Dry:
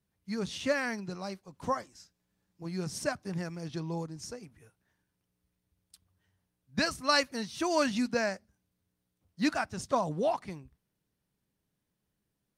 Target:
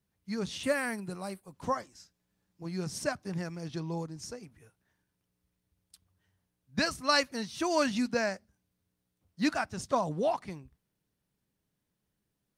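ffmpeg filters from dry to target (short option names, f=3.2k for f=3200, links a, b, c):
-filter_complex "[0:a]asettb=1/sr,asplit=3[a][b][c];[a]atrim=end=0.634[d];[b]atrim=start=0.63:end=1.53,asetpts=PTS-STARTPTS,afade=t=in:d=0.004:c=qsin,afade=t=out:st=0.896:d=0.004:c=qsin,highshelf=f=7.5k:t=q:w=3:g=8.5[e];[c]atrim=start=1.526[f];[d][e]acrossfade=d=0.004:c1=hsin:c2=qsin[g];[g][f]acrossfade=d=0.004:c1=qsin:c2=hsin"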